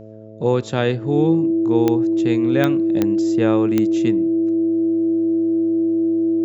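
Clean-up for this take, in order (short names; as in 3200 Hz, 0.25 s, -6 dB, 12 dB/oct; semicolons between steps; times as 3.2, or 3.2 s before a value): de-click; de-hum 108.6 Hz, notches 6; notch 330 Hz, Q 30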